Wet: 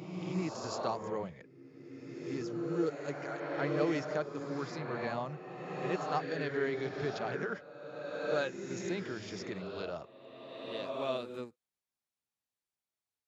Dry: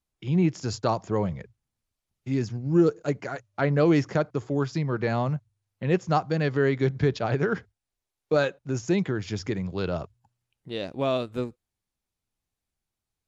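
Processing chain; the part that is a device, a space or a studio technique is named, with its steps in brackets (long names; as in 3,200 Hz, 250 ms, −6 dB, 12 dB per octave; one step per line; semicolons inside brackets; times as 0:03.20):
ghost voice (reversed playback; convolution reverb RT60 2.4 s, pre-delay 19 ms, DRR 1.5 dB; reversed playback; high-pass filter 420 Hz 6 dB per octave)
level −8.5 dB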